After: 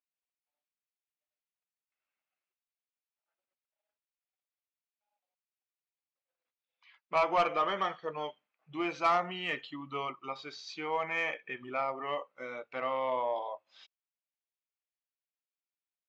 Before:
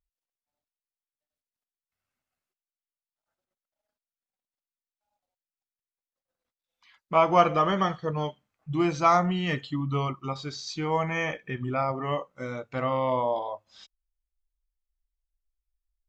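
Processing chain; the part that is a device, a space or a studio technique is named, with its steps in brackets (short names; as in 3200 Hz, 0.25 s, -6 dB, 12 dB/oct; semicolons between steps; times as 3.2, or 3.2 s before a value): intercom (BPF 410–4100 Hz; bell 2500 Hz +6 dB 0.54 oct; soft clip -14.5 dBFS, distortion -15 dB); gain -4.5 dB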